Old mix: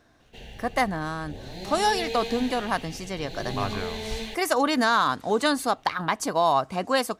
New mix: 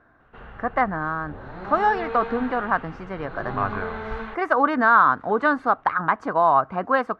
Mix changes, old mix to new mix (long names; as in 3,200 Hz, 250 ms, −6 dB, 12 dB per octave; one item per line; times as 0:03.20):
background: remove Butterworth band-reject 1,200 Hz, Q 1.5
master: add low-pass with resonance 1,400 Hz, resonance Q 2.7